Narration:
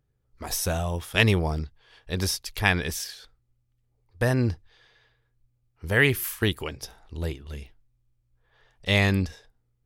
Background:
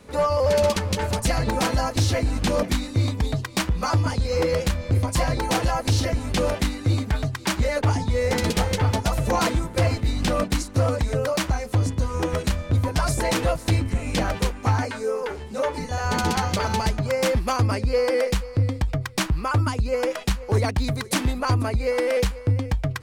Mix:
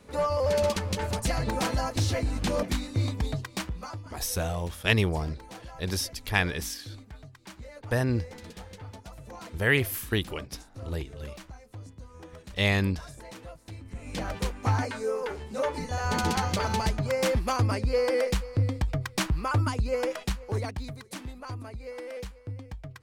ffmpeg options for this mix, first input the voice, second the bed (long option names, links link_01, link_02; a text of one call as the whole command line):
ffmpeg -i stem1.wav -i stem2.wav -filter_complex "[0:a]adelay=3700,volume=-3dB[link_01];[1:a]volume=12.5dB,afade=type=out:start_time=3.29:duration=0.74:silence=0.149624,afade=type=in:start_time=13.79:duration=0.95:silence=0.125893,afade=type=out:start_time=19.9:duration=1.13:silence=0.237137[link_02];[link_01][link_02]amix=inputs=2:normalize=0" out.wav